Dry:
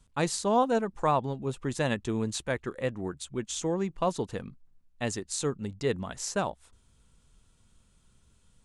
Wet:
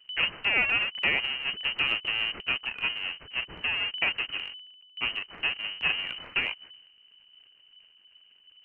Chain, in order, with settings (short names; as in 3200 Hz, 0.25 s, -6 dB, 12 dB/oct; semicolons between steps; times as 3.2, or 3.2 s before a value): half-waves squared off; inverted band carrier 3000 Hz; transient shaper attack +3 dB, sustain +8 dB; gain -5.5 dB